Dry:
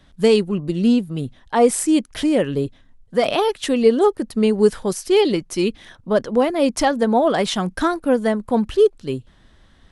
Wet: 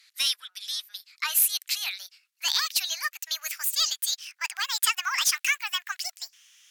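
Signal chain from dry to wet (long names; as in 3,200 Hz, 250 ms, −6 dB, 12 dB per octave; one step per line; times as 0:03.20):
gliding playback speed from 120% → 176%
Bessel high-pass filter 2,600 Hz, order 6
in parallel at −11.5 dB: wave folding −25.5 dBFS
on the sum: level +3.5 dB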